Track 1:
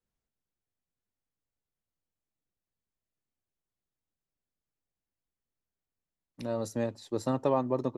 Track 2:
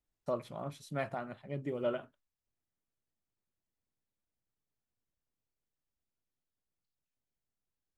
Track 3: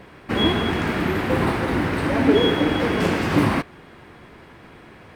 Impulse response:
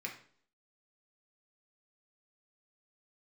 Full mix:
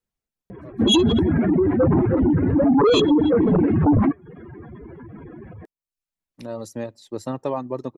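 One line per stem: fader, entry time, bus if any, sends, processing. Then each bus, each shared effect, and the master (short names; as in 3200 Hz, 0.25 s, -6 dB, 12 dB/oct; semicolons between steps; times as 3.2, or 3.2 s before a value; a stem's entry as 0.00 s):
+1.5 dB, 0.00 s, send -20 dB, dry
-11.5 dB, 0.35 s, no send, dry
-4.5 dB, 0.50 s, no send, spectral contrast raised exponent 2.8; sine folder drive 8 dB, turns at -7 dBFS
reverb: on, RT60 0.55 s, pre-delay 3 ms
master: reverb removal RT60 0.51 s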